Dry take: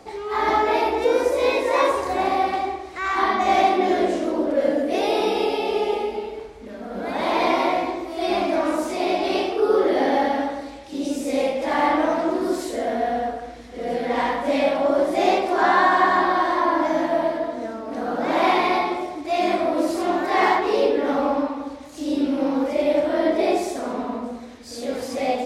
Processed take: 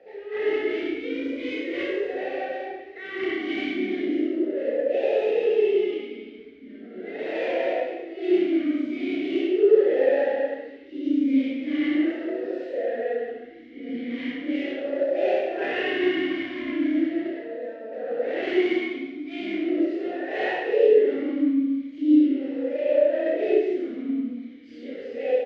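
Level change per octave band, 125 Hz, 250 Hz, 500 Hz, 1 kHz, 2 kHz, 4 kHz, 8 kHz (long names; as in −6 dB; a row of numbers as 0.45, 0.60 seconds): below −10 dB, 0.0 dB, −2.0 dB, −18.0 dB, −5.5 dB, −7.0 dB, below −20 dB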